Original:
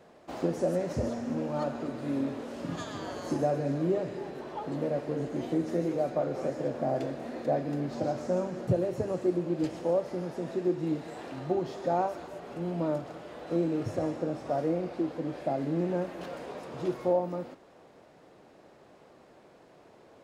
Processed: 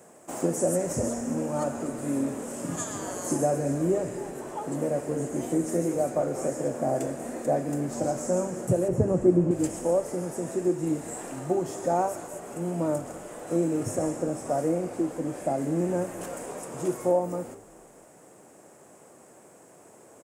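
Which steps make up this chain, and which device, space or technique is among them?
8.88–9.51 RIAA curve playback; budget condenser microphone (HPF 100 Hz; resonant high shelf 5800 Hz +13 dB, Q 3); frequency-shifting echo 0.204 s, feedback 48%, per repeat -69 Hz, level -22 dB; gain +3 dB

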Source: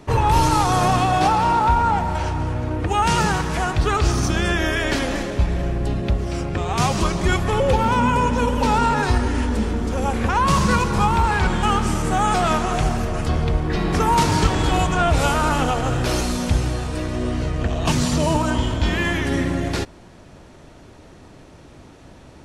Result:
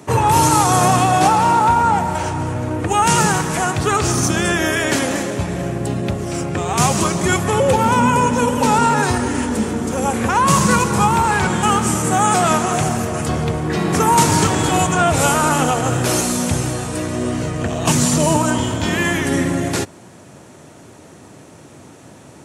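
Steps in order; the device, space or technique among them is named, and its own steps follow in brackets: budget condenser microphone (HPF 99 Hz 24 dB/oct; resonant high shelf 5900 Hz +7 dB, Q 1.5); gain +4 dB

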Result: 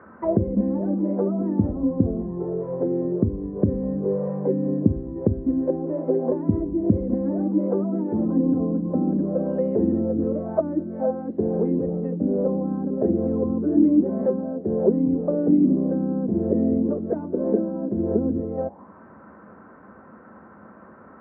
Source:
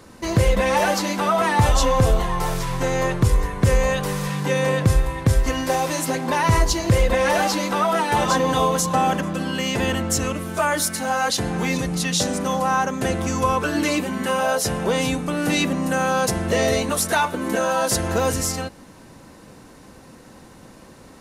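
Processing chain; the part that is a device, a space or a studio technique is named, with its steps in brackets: envelope filter bass rig (envelope low-pass 290–1500 Hz down, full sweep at -17 dBFS; speaker cabinet 69–2100 Hz, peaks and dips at 130 Hz -8 dB, 210 Hz +8 dB, 390 Hz +4 dB, 620 Hz +5 dB); gain -5.5 dB

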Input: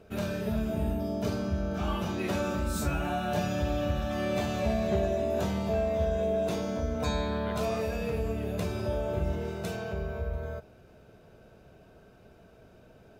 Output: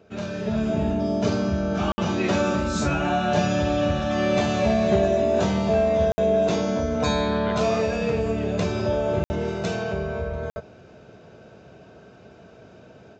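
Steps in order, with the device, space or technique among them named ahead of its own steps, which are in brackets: call with lost packets (HPF 100 Hz 12 dB/oct; downsampling 16000 Hz; AGC gain up to 7.5 dB; packet loss packets of 60 ms); gain +1 dB

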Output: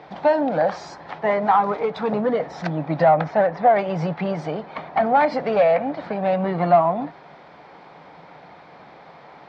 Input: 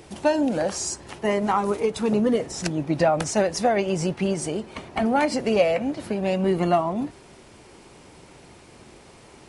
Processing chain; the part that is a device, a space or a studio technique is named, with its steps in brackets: 3.05–3.72 LPF 3600 Hz -> 1900 Hz 12 dB/oct; overdrive pedal into a guitar cabinet (overdrive pedal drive 15 dB, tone 1700 Hz, clips at -7 dBFS; speaker cabinet 92–4000 Hz, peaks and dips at 110 Hz -9 dB, 160 Hz +8 dB, 230 Hz -5 dB, 370 Hz -10 dB, 750 Hz +5 dB, 2800 Hz -10 dB)

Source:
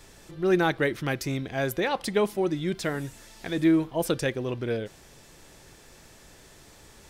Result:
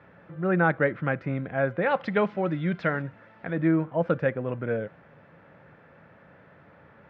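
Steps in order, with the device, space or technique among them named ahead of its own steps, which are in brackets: bass cabinet (speaker cabinet 89–2100 Hz, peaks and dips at 170 Hz +6 dB, 370 Hz -7 dB, 550 Hz +6 dB, 1400 Hz +6 dB); 1.86–3.02 bell 5400 Hz +13 dB 2 oct

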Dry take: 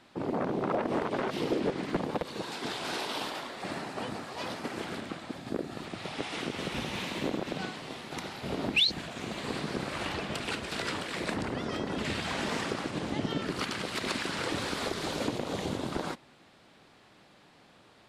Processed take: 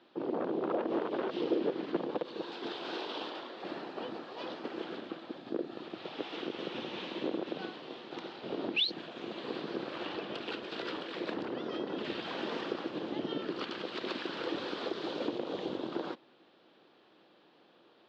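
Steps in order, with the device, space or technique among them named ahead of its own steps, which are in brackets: kitchen radio (speaker cabinet 220–4400 Hz, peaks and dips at 340 Hz +8 dB, 490 Hz +5 dB, 2100 Hz -6 dB, 3200 Hz +3 dB); gain -5.5 dB

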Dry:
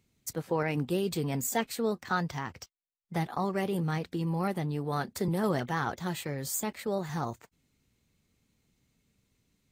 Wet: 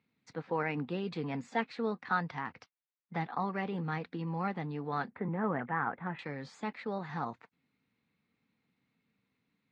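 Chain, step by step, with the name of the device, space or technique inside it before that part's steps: 5.1–6.19 inverse Chebyshev low-pass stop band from 5600 Hz, stop band 50 dB; kitchen radio (speaker cabinet 210–3500 Hz, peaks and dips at 370 Hz -9 dB, 600 Hz -7 dB, 3100 Hz -7 dB)

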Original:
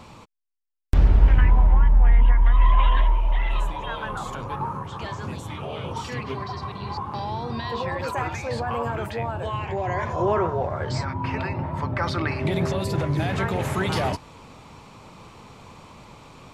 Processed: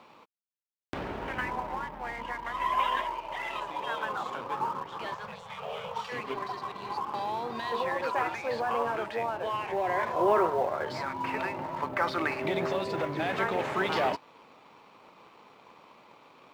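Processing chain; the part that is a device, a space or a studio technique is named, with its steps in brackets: phone line with mismatched companding (BPF 330–3600 Hz; G.711 law mismatch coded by A); 5.15–6.12 elliptic band-stop 210–440 Hz

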